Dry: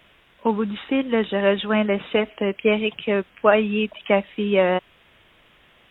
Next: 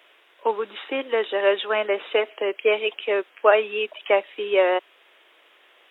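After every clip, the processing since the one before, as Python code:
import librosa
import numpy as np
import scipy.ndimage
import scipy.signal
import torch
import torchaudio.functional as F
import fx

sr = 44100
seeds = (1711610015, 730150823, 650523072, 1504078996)

y = scipy.signal.sosfilt(scipy.signal.butter(6, 340.0, 'highpass', fs=sr, output='sos'), x)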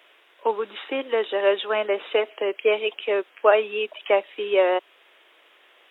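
y = fx.dynamic_eq(x, sr, hz=1900.0, q=1.2, threshold_db=-33.0, ratio=4.0, max_db=-3)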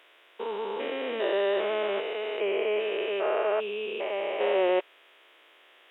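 y = fx.spec_steps(x, sr, hold_ms=400)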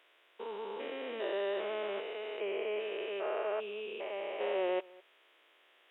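y = x + 10.0 ** (-23.5 / 20.0) * np.pad(x, (int(207 * sr / 1000.0), 0))[:len(x)]
y = F.gain(torch.from_numpy(y), -8.5).numpy()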